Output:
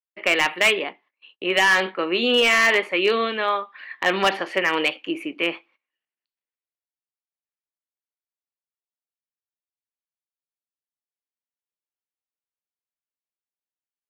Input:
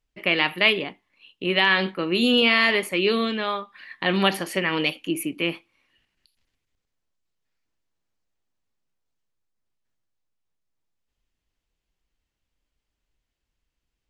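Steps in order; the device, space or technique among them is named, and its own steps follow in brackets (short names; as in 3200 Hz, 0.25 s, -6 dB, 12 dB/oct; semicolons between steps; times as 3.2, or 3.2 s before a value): walkie-talkie (BPF 440–2700 Hz; hard clip -16.5 dBFS, distortion -13 dB; gate -58 dBFS, range -23 dB); gain +5.5 dB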